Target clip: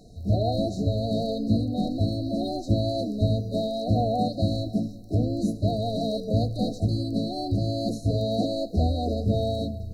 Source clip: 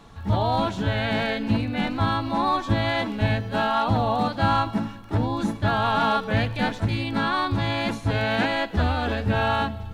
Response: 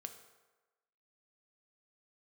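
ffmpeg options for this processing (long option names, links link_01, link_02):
-af "afftfilt=real='re*(1-between(b*sr/4096,750,3800))':imag='im*(1-between(b*sr/4096,750,3800))':win_size=4096:overlap=0.75"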